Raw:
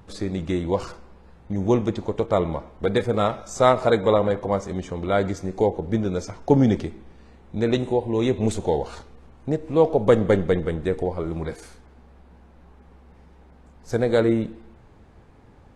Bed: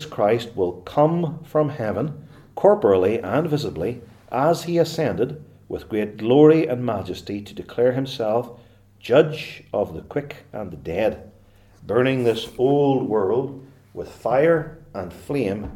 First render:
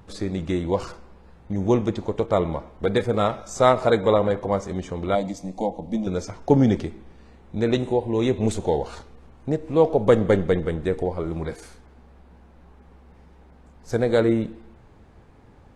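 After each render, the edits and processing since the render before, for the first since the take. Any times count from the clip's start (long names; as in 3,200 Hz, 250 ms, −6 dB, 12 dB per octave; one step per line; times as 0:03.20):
0:05.15–0:06.07: phaser with its sweep stopped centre 400 Hz, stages 6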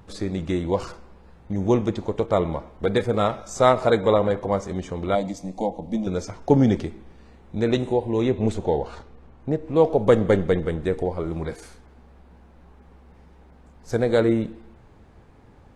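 0:08.22–0:09.76: low-pass filter 2,800 Hz 6 dB per octave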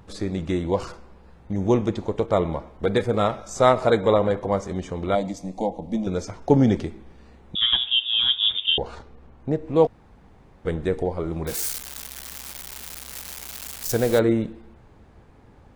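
0:07.55–0:08.78: voice inversion scrambler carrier 3,600 Hz
0:09.87–0:10.65: fill with room tone
0:11.47–0:14.19: spike at every zero crossing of −19.5 dBFS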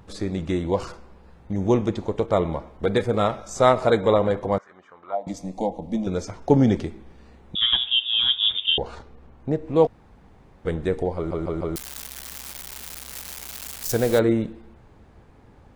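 0:04.58–0:05.27: envelope filter 740–1,900 Hz, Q 3.9, down, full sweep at −17.5 dBFS
0:11.16: stutter in place 0.15 s, 4 plays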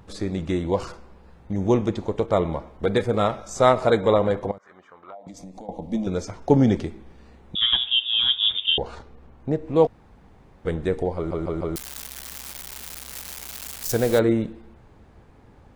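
0:04.51–0:05.69: downward compressor 16 to 1, threshold −36 dBFS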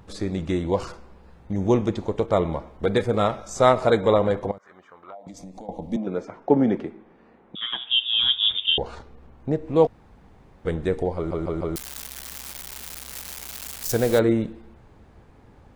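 0:05.96–0:07.90: three-way crossover with the lows and the highs turned down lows −22 dB, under 170 Hz, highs −19 dB, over 2,500 Hz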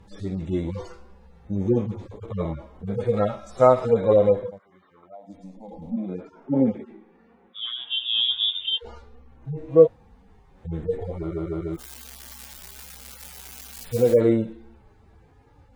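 harmonic-percussive split with one part muted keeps harmonic
dynamic equaliser 520 Hz, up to +6 dB, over −37 dBFS, Q 3.4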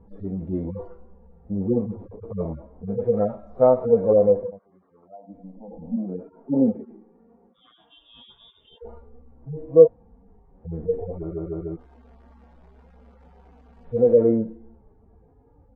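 Chebyshev low-pass filter 650 Hz, order 2
comb filter 4.3 ms, depth 32%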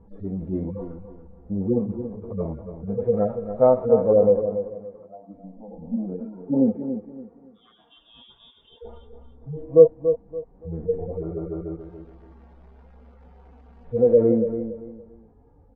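high-frequency loss of the air 60 metres
repeating echo 284 ms, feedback 28%, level −9.5 dB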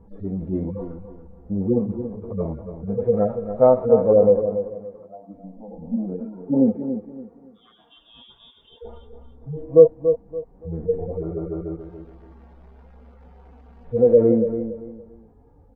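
level +2 dB
brickwall limiter −1 dBFS, peak gain reduction 1.5 dB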